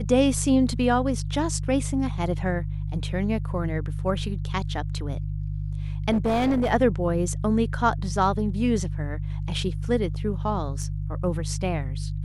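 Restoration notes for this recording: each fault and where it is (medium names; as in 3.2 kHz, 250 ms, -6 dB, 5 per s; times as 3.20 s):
hum 50 Hz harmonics 3 -29 dBFS
6.11–6.72 s: clipped -18.5 dBFS
10.83 s: dropout 3.5 ms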